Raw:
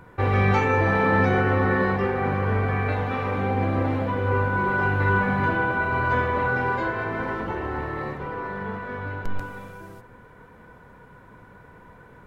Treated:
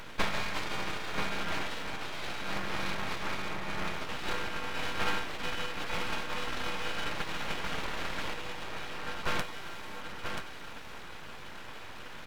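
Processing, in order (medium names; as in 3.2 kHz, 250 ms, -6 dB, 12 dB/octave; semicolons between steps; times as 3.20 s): spectral levelling over time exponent 0.4; compression 8:1, threshold -19 dBFS, peak gain reduction 7 dB; peaking EQ 390 Hz -5 dB 2.4 oct; de-hum 194.9 Hz, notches 2; gate -22 dBFS, range -19 dB; treble shelf 2.2 kHz +11 dB; comb of notches 160 Hz; delay 983 ms -6 dB; full-wave rectifier; 5.94–8.34 s: three bands compressed up and down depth 100%; trim +5 dB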